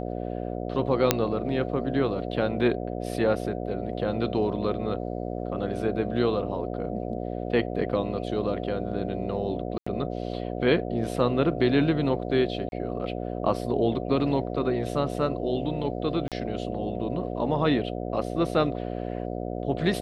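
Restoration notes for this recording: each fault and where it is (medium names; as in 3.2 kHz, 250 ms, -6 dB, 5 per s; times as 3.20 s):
buzz 60 Hz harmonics 12 -32 dBFS
1.11 s: pop -2 dBFS
9.78–9.87 s: dropout 85 ms
12.69–12.72 s: dropout 31 ms
16.28–16.32 s: dropout 37 ms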